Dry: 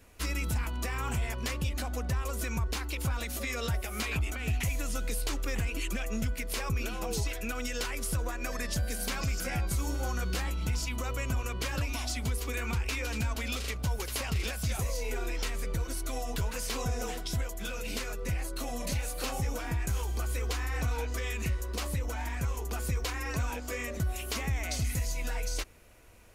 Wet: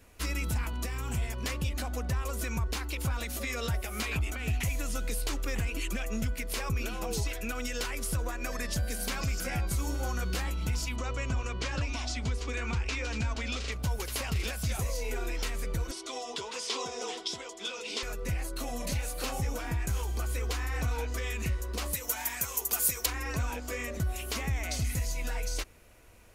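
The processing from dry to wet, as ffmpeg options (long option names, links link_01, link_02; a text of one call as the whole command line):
ffmpeg -i in.wav -filter_complex "[0:a]asettb=1/sr,asplit=3[link_01][link_02][link_03];[link_01]atrim=end=0.734[link_04];[link_02]atrim=start=0.73:end=1.45,asetpts=PTS-STARTPTS,afade=type=in:duration=0.004:curve=qsin,afade=type=out:start_time=0.716:duration=0.004:curve=qsin,acrossover=split=440|3000[link_05][link_06][link_07];[link_06]acompressor=threshold=-42dB:ratio=6:attack=3.2:release=140:knee=2.83:detection=peak[link_08];[link_05][link_08][link_07]amix=inputs=3:normalize=0[link_09];[link_03]atrim=start=1.446[link_10];[link_04][link_09]acrossfade=duration=0.004:curve1=hsin:curve2=qsin[link_11];[link_11][link_10]acrossfade=duration=0.004:curve1=qsin:curve2=hsin,asettb=1/sr,asplit=3[link_12][link_13][link_14];[link_12]atrim=end=10.964[link_15];[link_13]atrim=start=10.96:end=13.72,asetpts=PTS-STARTPTS,afade=type=in:duration=0.004:curve=qsin,afade=type=out:start_time=2.756:duration=0.004:curve=qsin,lowpass=frequency=7200:width=0.5412,lowpass=frequency=7200:width=1.3066[link_16];[link_14]atrim=start=13.716[link_17];[link_15][link_16]acrossfade=duration=0.004:curve1=hsin:curve2=qsin[link_18];[link_18][link_17]acrossfade=duration=0.004:curve1=qsin:curve2=hsin,asettb=1/sr,asplit=3[link_19][link_20][link_21];[link_19]atrim=end=15.914[link_22];[link_20]atrim=start=15.91:end=18.03,asetpts=PTS-STARTPTS,afade=type=in:duration=0.004:curve=qsin,afade=type=out:start_time=2.116:duration=0.004:curve=qsin,highpass=370,equalizer=frequency=390:width_type=q:width=4:gain=8,equalizer=frequency=590:width_type=q:width=4:gain=-5,equalizer=frequency=1000:width_type=q:width=4:gain=4,equalizer=frequency=1600:width_type=q:width=4:gain=-6,equalizer=frequency=3400:width_type=q:width=4:gain=8,equalizer=frequency=5100:width_type=q:width=4:gain=5,lowpass=frequency=8200:width=0.5412,lowpass=frequency=8200:width=1.3066[link_23];[link_21]atrim=start=18.026[link_24];[link_22][link_23]acrossfade=duration=0.004:curve1=hsin:curve2=qsin[link_25];[link_25][link_24]acrossfade=duration=0.004:curve1=qsin:curve2=hsin,asettb=1/sr,asplit=3[link_26][link_27][link_28];[link_26]atrim=end=21.934[link_29];[link_27]atrim=start=21.93:end=23.06,asetpts=PTS-STARTPTS,afade=type=in:duration=0.004:curve=qsin,afade=type=out:start_time=1.126:duration=0.004:curve=qsin,aemphasis=mode=production:type=riaa[link_30];[link_28]atrim=start=23.056[link_31];[link_29][link_30]acrossfade=duration=0.004:curve1=hsin:curve2=qsin[link_32];[link_32][link_31]acrossfade=duration=0.004:curve1=qsin:curve2=hsin" out.wav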